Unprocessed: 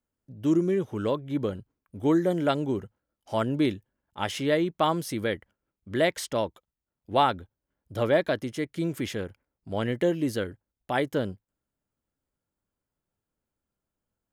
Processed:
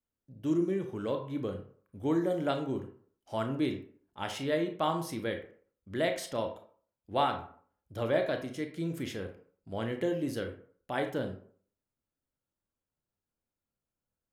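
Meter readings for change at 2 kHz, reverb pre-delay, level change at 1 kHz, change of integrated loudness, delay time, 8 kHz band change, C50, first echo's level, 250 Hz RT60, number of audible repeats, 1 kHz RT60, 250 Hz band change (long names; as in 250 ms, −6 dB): −6.0 dB, 24 ms, −6.0 dB, −6.0 dB, no echo audible, −6.5 dB, 8.5 dB, no echo audible, 0.50 s, no echo audible, 0.50 s, −6.0 dB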